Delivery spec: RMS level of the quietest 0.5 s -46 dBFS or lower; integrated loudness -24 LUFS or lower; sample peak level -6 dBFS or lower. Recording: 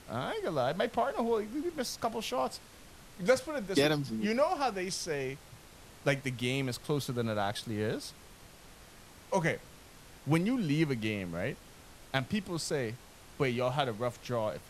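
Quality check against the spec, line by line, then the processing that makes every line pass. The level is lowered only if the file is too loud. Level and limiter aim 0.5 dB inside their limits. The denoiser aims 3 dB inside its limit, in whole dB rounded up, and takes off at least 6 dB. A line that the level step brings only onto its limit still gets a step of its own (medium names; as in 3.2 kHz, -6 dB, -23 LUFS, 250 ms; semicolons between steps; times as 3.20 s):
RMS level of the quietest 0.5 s -54 dBFS: pass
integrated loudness -33.0 LUFS: pass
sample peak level -12.0 dBFS: pass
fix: none needed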